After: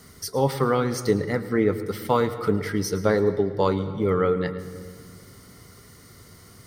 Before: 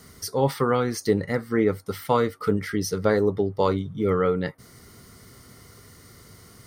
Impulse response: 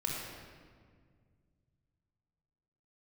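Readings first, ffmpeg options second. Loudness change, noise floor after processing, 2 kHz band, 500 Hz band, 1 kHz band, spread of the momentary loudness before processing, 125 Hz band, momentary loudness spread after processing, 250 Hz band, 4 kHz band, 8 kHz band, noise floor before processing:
+0.5 dB, -49 dBFS, +0.5 dB, +0.5 dB, +0.5 dB, 5 LU, +1.0 dB, 8 LU, +0.5 dB, 0.0 dB, 0.0 dB, -51 dBFS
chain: -filter_complex "[0:a]asplit=2[a][b];[1:a]atrim=start_sample=2205,adelay=110[c];[b][c]afir=irnorm=-1:irlink=0,volume=-16.5dB[d];[a][d]amix=inputs=2:normalize=0"

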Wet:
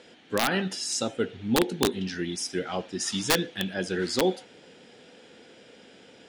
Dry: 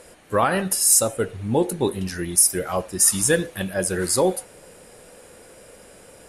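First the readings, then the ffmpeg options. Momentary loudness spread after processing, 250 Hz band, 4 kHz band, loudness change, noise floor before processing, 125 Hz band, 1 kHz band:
7 LU, -2.5 dB, +1.0 dB, -8.0 dB, -48 dBFS, -6.5 dB, -6.0 dB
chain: -af "highpass=160,equalizer=f=250:t=q:w=4:g=6,equalizer=f=580:t=q:w=4:g=-8,equalizer=f=1.1k:t=q:w=4:g=-9,equalizer=f=3.3k:t=q:w=4:g=9,lowpass=f=5.7k:w=0.5412,lowpass=f=5.7k:w=1.3066,aeval=exprs='(mod(3.55*val(0)+1,2)-1)/3.55':c=same,volume=-2.5dB"

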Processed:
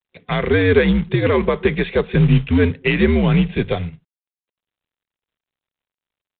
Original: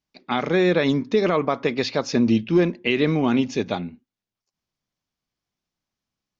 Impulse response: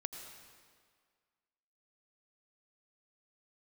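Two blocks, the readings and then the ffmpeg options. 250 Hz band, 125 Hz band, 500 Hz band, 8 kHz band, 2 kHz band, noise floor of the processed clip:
+2.5 dB, +11.0 dB, +3.5 dB, n/a, +6.0 dB, under -85 dBFS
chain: -filter_complex "[0:a]acrossover=split=2500[a][b];[b]acompressor=threshold=-46dB:ratio=4:attack=1:release=60[c];[a][c]amix=inputs=2:normalize=0,highshelf=f=2.2k:g=7,afreqshift=-83,acrossover=split=460|780[d][e][f];[e]acompressor=threshold=-41dB:ratio=5[g];[d][g][f]amix=inputs=3:normalize=0,superequalizer=6b=0.447:7b=2:9b=0.631:10b=0.562,acrusher=bits=5:mode=log:mix=0:aa=0.000001,volume=5.5dB" -ar 8000 -c:a adpcm_g726 -b:a 32k

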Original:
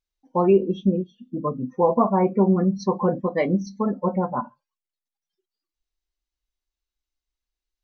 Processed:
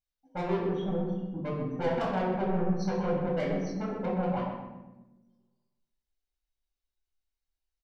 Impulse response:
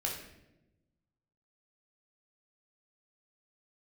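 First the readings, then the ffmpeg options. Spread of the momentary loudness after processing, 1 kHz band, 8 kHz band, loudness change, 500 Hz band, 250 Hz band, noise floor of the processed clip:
8 LU, -9.0 dB, n/a, -8.5 dB, -9.0 dB, -9.0 dB, under -85 dBFS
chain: -filter_complex "[0:a]asoftclip=type=tanh:threshold=-22.5dB,asplit=2[a][b];[b]adelay=125,lowpass=f=2.2k:p=1,volume=-5.5dB,asplit=2[c][d];[d]adelay=125,lowpass=f=2.2k:p=1,volume=0.42,asplit=2[e][f];[f]adelay=125,lowpass=f=2.2k:p=1,volume=0.42,asplit=2[g][h];[h]adelay=125,lowpass=f=2.2k:p=1,volume=0.42,asplit=2[i][j];[j]adelay=125,lowpass=f=2.2k:p=1,volume=0.42[k];[a][c][e][g][i][k]amix=inputs=6:normalize=0[l];[1:a]atrim=start_sample=2205[m];[l][m]afir=irnorm=-1:irlink=0,volume=-7.5dB"

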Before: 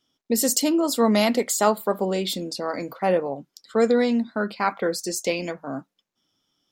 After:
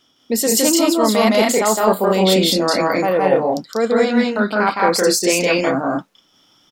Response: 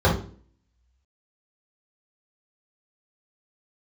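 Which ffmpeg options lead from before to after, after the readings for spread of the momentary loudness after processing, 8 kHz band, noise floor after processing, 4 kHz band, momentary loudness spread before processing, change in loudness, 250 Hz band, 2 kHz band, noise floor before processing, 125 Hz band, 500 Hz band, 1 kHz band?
6 LU, +7.5 dB, -59 dBFS, +10.0 dB, 11 LU, +7.0 dB, +6.5 dB, +10.0 dB, -80 dBFS, +8.5 dB, +7.5 dB, +8.0 dB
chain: -af "equalizer=f=1.4k:w=0.35:g=5,areverse,acompressor=threshold=-28dB:ratio=4,areverse,aecho=1:1:163.3|195.3:0.891|0.794,acontrast=89,volume=4dB"

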